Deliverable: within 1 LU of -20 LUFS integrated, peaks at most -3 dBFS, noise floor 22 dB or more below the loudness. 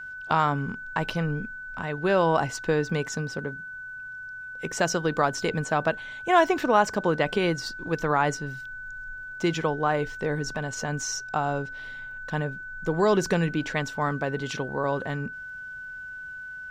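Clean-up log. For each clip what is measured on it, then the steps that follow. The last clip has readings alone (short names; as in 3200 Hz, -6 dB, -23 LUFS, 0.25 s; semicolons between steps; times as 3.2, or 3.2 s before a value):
ticks 17/s; steady tone 1500 Hz; tone level -36 dBFS; loudness -27.0 LUFS; peak -7.0 dBFS; loudness target -20.0 LUFS
-> de-click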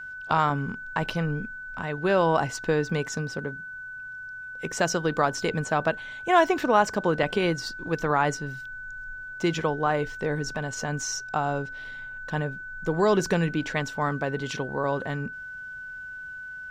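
ticks 0/s; steady tone 1500 Hz; tone level -36 dBFS
-> notch 1500 Hz, Q 30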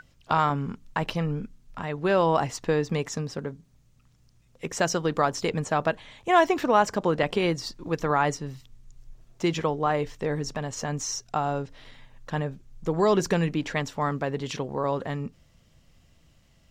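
steady tone none; loudness -27.0 LUFS; peak -7.5 dBFS; loudness target -20.0 LUFS
-> gain +7 dB; limiter -3 dBFS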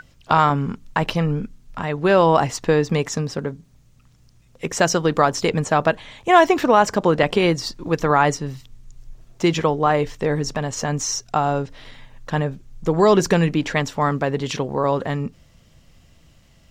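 loudness -20.0 LUFS; peak -3.0 dBFS; noise floor -54 dBFS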